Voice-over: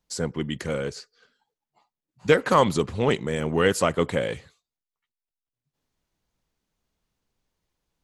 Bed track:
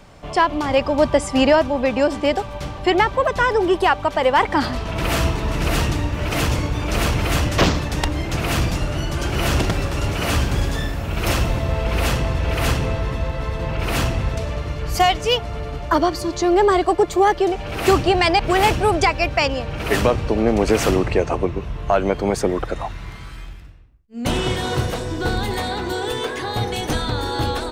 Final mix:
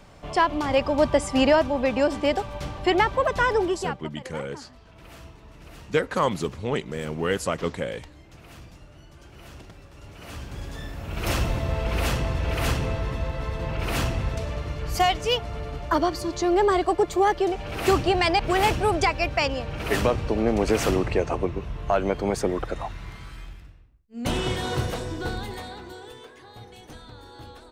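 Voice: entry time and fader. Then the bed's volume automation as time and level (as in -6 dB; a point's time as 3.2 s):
3.65 s, -4.5 dB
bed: 3.6 s -4 dB
4.18 s -25.5 dB
9.86 s -25.5 dB
11.35 s -5 dB
25.03 s -5 dB
26.34 s -21.5 dB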